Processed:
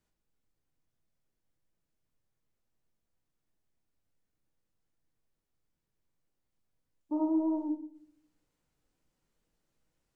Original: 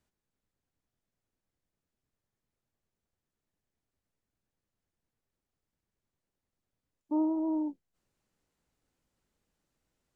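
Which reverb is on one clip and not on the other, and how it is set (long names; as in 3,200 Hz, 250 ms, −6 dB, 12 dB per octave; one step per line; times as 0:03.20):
rectangular room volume 77 cubic metres, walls mixed, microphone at 0.54 metres
level −2 dB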